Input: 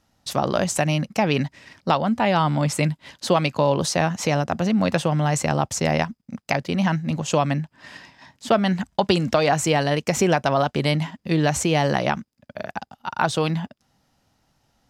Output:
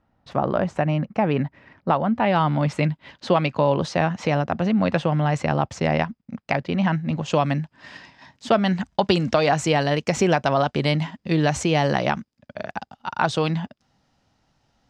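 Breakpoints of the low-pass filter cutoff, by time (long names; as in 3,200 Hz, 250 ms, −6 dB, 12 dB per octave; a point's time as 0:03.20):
0:01.90 1,700 Hz
0:02.38 3,200 Hz
0:07.13 3,200 Hz
0:07.56 6,000 Hz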